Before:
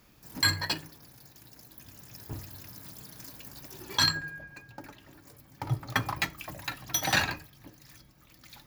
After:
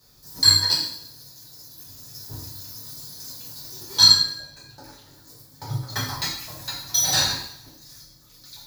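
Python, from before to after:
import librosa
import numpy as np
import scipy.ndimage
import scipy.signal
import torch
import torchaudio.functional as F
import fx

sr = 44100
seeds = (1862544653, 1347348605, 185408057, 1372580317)

y = fx.high_shelf_res(x, sr, hz=3400.0, db=7.5, q=3.0)
y = fx.rev_double_slope(y, sr, seeds[0], early_s=0.64, late_s=1.6, knee_db=-23, drr_db=-8.5)
y = y * 10.0 ** (-8.0 / 20.0)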